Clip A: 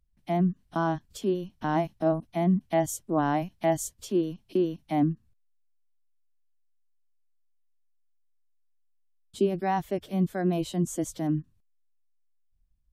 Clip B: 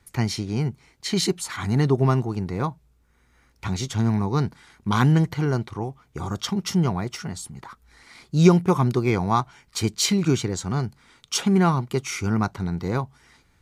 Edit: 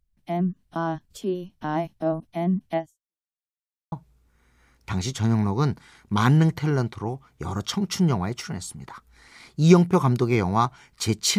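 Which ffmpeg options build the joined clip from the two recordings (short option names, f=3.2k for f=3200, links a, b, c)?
-filter_complex "[0:a]apad=whole_dur=11.38,atrim=end=11.38,asplit=2[a][b];[a]atrim=end=3.23,asetpts=PTS-STARTPTS,afade=t=out:st=2.77:d=0.46:c=exp[c];[b]atrim=start=3.23:end=3.92,asetpts=PTS-STARTPTS,volume=0[d];[1:a]atrim=start=2.67:end=10.13,asetpts=PTS-STARTPTS,afade=t=in:d=0.004:c=hsin[e];[c][d][e]concat=n=3:v=0:a=1"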